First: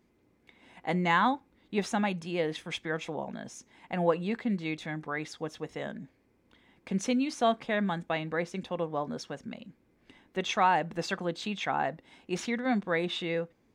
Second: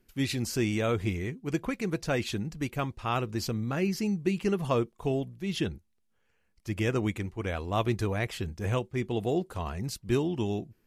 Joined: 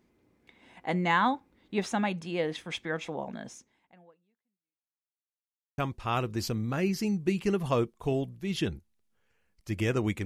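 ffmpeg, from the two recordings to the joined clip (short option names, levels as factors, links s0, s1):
-filter_complex "[0:a]apad=whole_dur=10.25,atrim=end=10.25,asplit=2[s0][s1];[s0]atrim=end=5.24,asetpts=PTS-STARTPTS,afade=t=out:st=3.52:d=1.72:c=exp[s2];[s1]atrim=start=5.24:end=5.78,asetpts=PTS-STARTPTS,volume=0[s3];[1:a]atrim=start=2.77:end=7.24,asetpts=PTS-STARTPTS,afade=t=in:d=0.004:c=hsin[s4];[s2][s3][s4]concat=n=3:v=0:a=1"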